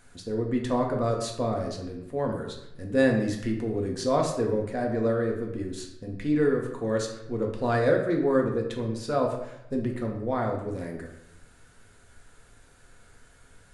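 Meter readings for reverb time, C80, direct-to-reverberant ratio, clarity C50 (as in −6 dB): 0.85 s, 8.5 dB, 0.5 dB, 5.5 dB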